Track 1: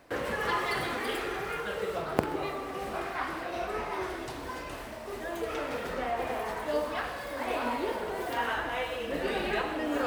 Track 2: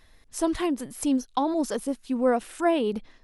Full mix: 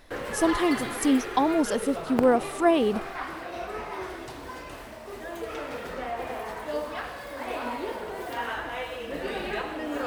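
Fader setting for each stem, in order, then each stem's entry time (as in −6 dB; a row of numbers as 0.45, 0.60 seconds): −1.0, +2.0 decibels; 0.00, 0.00 seconds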